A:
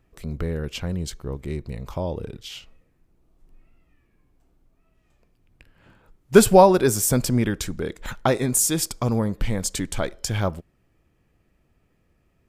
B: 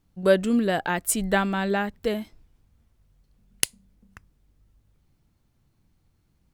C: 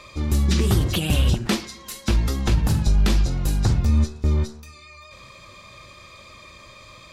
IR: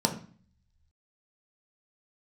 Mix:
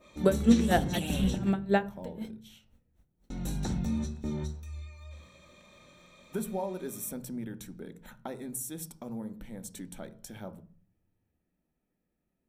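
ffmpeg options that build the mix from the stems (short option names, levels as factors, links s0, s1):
-filter_complex "[0:a]acompressor=threshold=0.0708:ratio=2,aexciter=amount=3.9:drive=2.5:freq=9600,volume=0.1,asplit=2[s0][s1];[s1]volume=0.224[s2];[1:a]aeval=exprs='val(0)*pow(10,-37*(0.5-0.5*cos(2*PI*4*n/s))/20)':c=same,volume=0.891,asplit=2[s3][s4];[s4]volume=0.141[s5];[2:a]adynamicequalizer=threshold=0.00708:dfrequency=1700:dqfactor=0.7:tfrequency=1700:tqfactor=0.7:attack=5:release=100:ratio=0.375:range=1.5:mode=boostabove:tftype=highshelf,volume=0.188,asplit=3[s6][s7][s8];[s6]atrim=end=1.49,asetpts=PTS-STARTPTS,afade=t=out:st=1.486:d=0.004:c=hsin[s9];[s7]atrim=start=1.49:end=3.3,asetpts=PTS-STARTPTS,volume=0[s10];[s8]atrim=start=3.3,asetpts=PTS-STARTPTS,afade=t=in:d=0.004:c=hsin[s11];[s9][s10][s11]concat=n=3:v=0:a=1,asplit=2[s12][s13];[s13]volume=0.237[s14];[3:a]atrim=start_sample=2205[s15];[s2][s5][s14]amix=inputs=3:normalize=0[s16];[s16][s15]afir=irnorm=-1:irlink=0[s17];[s0][s3][s12][s17]amix=inputs=4:normalize=0"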